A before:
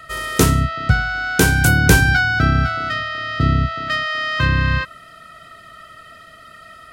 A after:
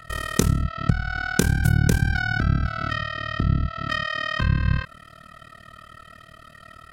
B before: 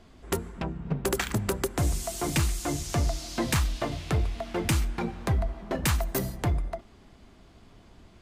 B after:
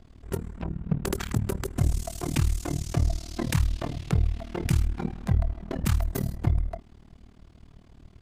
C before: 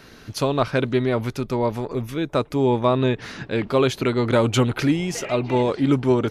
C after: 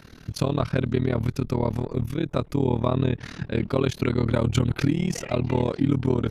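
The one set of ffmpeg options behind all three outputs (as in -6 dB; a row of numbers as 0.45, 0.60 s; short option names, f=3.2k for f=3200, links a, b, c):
-af "bass=f=250:g=9,treble=f=4k:g=0,acompressor=threshold=-13dB:ratio=4,tremolo=f=38:d=0.947,volume=-1dB"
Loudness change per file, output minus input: -6.5, +0.5, -3.0 LU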